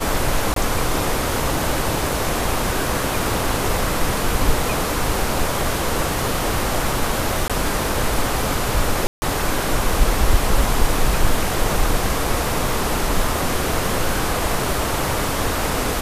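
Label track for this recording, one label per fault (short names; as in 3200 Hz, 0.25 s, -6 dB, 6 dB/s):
0.540000	0.560000	gap 23 ms
7.480000	7.500000	gap 17 ms
9.070000	9.220000	gap 0.15 s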